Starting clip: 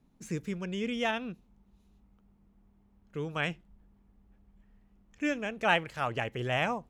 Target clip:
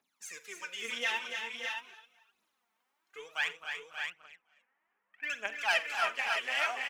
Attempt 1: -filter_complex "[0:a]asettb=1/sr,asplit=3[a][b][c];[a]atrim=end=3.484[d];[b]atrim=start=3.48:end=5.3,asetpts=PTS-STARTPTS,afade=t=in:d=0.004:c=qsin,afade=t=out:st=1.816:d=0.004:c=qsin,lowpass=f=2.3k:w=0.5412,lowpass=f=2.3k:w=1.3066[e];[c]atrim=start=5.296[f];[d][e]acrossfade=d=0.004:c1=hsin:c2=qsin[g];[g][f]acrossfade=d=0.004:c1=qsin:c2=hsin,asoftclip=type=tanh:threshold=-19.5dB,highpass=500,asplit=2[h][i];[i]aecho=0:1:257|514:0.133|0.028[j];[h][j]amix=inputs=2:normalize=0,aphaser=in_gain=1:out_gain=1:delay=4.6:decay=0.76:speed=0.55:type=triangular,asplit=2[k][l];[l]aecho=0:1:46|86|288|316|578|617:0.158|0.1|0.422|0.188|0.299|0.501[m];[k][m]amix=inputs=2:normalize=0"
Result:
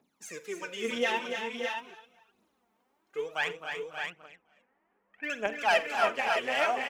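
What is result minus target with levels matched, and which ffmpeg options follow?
500 Hz band +9.5 dB
-filter_complex "[0:a]asettb=1/sr,asplit=3[a][b][c];[a]atrim=end=3.484[d];[b]atrim=start=3.48:end=5.3,asetpts=PTS-STARTPTS,afade=t=in:d=0.004:c=qsin,afade=t=out:st=1.816:d=0.004:c=qsin,lowpass=f=2.3k:w=0.5412,lowpass=f=2.3k:w=1.3066[e];[c]atrim=start=5.296[f];[d][e]acrossfade=d=0.004:c1=hsin:c2=qsin[g];[g][f]acrossfade=d=0.004:c1=qsin:c2=hsin,asoftclip=type=tanh:threshold=-19.5dB,highpass=1.3k,asplit=2[h][i];[i]aecho=0:1:257|514:0.133|0.028[j];[h][j]amix=inputs=2:normalize=0,aphaser=in_gain=1:out_gain=1:delay=4.6:decay=0.76:speed=0.55:type=triangular,asplit=2[k][l];[l]aecho=0:1:46|86|288|316|578|617:0.158|0.1|0.422|0.188|0.299|0.501[m];[k][m]amix=inputs=2:normalize=0"

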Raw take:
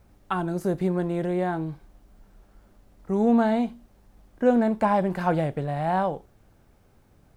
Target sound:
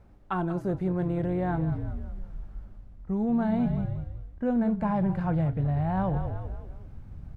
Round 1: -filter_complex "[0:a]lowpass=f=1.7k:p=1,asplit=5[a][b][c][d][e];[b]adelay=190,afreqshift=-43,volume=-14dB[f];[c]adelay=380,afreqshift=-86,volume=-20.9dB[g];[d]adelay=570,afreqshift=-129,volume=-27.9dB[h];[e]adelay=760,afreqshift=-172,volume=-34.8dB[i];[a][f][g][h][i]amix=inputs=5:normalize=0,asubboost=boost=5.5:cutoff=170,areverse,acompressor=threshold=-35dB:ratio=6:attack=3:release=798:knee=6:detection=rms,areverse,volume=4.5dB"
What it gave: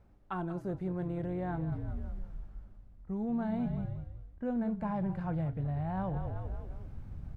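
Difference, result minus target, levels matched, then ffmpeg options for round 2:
compressor: peak gain reduction +7.5 dB
-filter_complex "[0:a]lowpass=f=1.7k:p=1,asplit=5[a][b][c][d][e];[b]adelay=190,afreqshift=-43,volume=-14dB[f];[c]adelay=380,afreqshift=-86,volume=-20.9dB[g];[d]adelay=570,afreqshift=-129,volume=-27.9dB[h];[e]adelay=760,afreqshift=-172,volume=-34.8dB[i];[a][f][g][h][i]amix=inputs=5:normalize=0,asubboost=boost=5.5:cutoff=170,areverse,acompressor=threshold=-26dB:ratio=6:attack=3:release=798:knee=6:detection=rms,areverse,volume=4.5dB"

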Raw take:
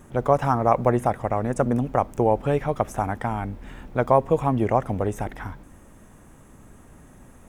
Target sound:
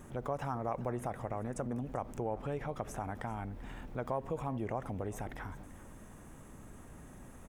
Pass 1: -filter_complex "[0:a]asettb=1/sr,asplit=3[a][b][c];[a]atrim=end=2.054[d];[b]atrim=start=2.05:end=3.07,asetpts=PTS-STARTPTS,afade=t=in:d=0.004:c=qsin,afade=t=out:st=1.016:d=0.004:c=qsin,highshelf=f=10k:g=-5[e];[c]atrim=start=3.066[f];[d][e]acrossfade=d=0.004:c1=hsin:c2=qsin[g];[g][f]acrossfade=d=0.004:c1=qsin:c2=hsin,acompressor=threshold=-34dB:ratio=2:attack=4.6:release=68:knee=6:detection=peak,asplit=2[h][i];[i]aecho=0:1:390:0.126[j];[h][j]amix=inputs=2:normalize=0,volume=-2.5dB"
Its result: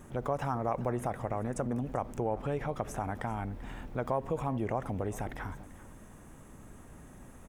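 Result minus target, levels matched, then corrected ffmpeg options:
compressor: peak gain reduction -4.5 dB
-filter_complex "[0:a]asettb=1/sr,asplit=3[a][b][c];[a]atrim=end=2.054[d];[b]atrim=start=2.05:end=3.07,asetpts=PTS-STARTPTS,afade=t=in:d=0.004:c=qsin,afade=t=out:st=1.016:d=0.004:c=qsin,highshelf=f=10k:g=-5[e];[c]atrim=start=3.066[f];[d][e]acrossfade=d=0.004:c1=hsin:c2=qsin[g];[g][f]acrossfade=d=0.004:c1=qsin:c2=hsin,acompressor=threshold=-42.5dB:ratio=2:attack=4.6:release=68:knee=6:detection=peak,asplit=2[h][i];[i]aecho=0:1:390:0.126[j];[h][j]amix=inputs=2:normalize=0,volume=-2.5dB"

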